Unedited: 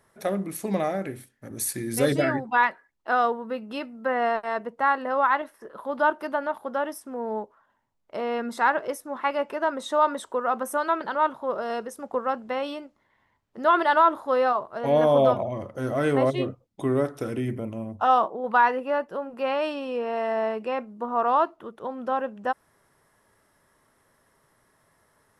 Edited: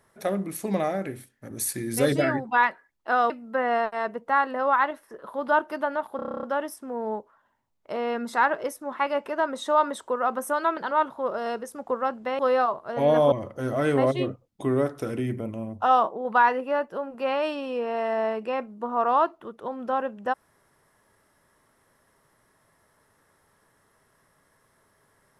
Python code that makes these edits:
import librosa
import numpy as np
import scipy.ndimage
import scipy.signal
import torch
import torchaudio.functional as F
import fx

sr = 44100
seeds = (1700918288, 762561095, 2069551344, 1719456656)

y = fx.edit(x, sr, fx.cut(start_s=3.3, length_s=0.51),
    fx.stutter(start_s=6.67, slice_s=0.03, count=10),
    fx.cut(start_s=12.63, length_s=1.63),
    fx.cut(start_s=15.19, length_s=0.32), tone=tone)